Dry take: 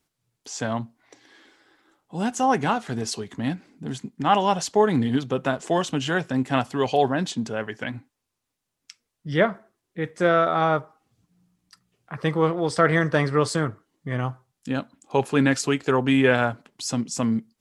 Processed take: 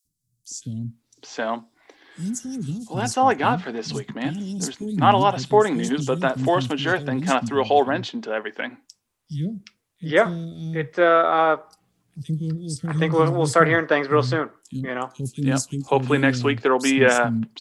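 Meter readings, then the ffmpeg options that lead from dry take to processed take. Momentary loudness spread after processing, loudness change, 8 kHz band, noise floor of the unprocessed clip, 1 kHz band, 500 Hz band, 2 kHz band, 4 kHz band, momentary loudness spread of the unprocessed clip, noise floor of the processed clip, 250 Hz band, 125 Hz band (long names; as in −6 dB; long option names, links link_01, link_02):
14 LU, +2.0 dB, +2.0 dB, −82 dBFS, +3.5 dB, +3.0 dB, +3.5 dB, +2.0 dB, 14 LU, −74 dBFS, +0.5 dB, +2.5 dB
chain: -filter_complex "[0:a]acrossover=split=240|5000[link_01][link_02][link_03];[link_01]adelay=50[link_04];[link_02]adelay=770[link_05];[link_04][link_05][link_03]amix=inputs=3:normalize=0,volume=3.5dB"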